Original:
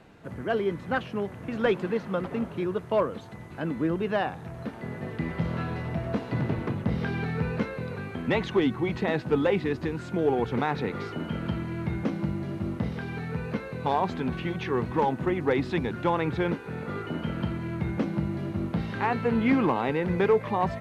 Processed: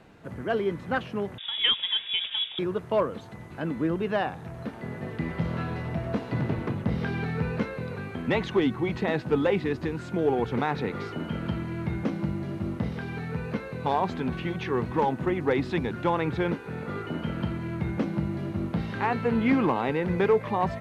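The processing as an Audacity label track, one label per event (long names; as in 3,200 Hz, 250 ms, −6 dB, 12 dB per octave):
1.380000	2.590000	voice inversion scrambler carrier 3,600 Hz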